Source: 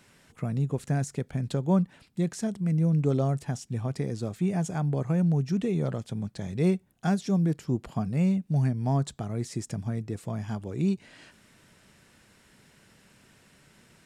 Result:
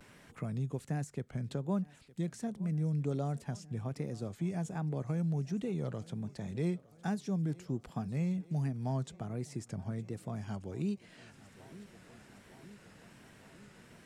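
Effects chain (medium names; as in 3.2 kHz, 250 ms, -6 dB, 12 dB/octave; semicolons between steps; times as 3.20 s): vibrato 1.3 Hz 84 cents; thinning echo 912 ms, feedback 67%, high-pass 150 Hz, level -22 dB; three bands compressed up and down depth 40%; trim -8.5 dB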